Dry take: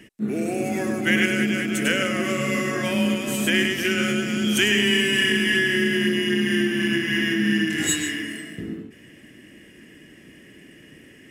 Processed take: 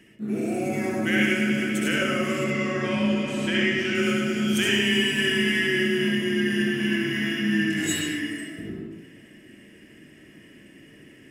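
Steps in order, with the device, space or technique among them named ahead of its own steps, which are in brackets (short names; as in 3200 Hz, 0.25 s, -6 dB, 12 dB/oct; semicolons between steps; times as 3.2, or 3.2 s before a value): 2.44–3.95 LPF 5400 Hz 12 dB/oct; bathroom (reverb RT60 0.55 s, pre-delay 62 ms, DRR -2.5 dB); gain -6.5 dB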